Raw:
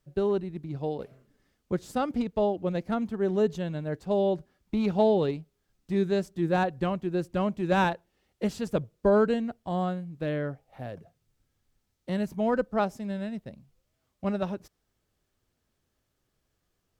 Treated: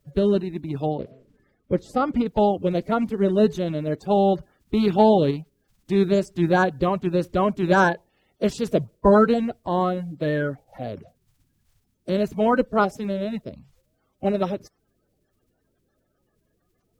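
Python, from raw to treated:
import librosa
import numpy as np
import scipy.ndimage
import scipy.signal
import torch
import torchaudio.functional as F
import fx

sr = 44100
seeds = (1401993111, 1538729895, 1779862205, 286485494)

y = fx.spec_quant(x, sr, step_db=30)
y = fx.high_shelf(y, sr, hz=3700.0, db=-11.5, at=(0.86, 2.26))
y = y * 10.0 ** (7.0 / 20.0)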